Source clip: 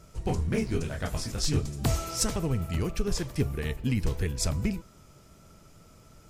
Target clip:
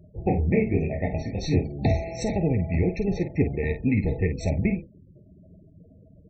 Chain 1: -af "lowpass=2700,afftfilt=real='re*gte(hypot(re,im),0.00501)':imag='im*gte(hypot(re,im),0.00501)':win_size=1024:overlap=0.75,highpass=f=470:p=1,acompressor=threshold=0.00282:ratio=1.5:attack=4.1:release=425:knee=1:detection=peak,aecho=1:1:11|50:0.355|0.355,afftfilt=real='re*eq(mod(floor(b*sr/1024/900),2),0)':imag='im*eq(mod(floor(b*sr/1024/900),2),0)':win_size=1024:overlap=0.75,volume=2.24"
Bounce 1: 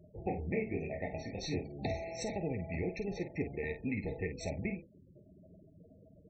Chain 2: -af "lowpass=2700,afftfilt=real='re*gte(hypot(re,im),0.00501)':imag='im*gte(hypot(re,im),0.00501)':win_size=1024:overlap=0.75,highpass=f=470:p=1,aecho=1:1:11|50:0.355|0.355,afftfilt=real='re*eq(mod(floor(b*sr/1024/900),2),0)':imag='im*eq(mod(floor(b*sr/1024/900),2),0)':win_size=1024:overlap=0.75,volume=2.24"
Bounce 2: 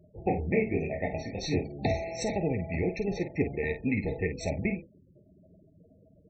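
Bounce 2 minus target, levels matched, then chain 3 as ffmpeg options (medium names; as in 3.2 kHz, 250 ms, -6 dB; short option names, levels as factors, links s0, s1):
125 Hz band -3.5 dB
-af "lowpass=2700,afftfilt=real='re*gte(hypot(re,im),0.00501)':imag='im*gte(hypot(re,im),0.00501)':win_size=1024:overlap=0.75,highpass=f=120:p=1,aecho=1:1:11|50:0.355|0.355,afftfilt=real='re*eq(mod(floor(b*sr/1024/900),2),0)':imag='im*eq(mod(floor(b*sr/1024/900),2),0)':win_size=1024:overlap=0.75,volume=2.24"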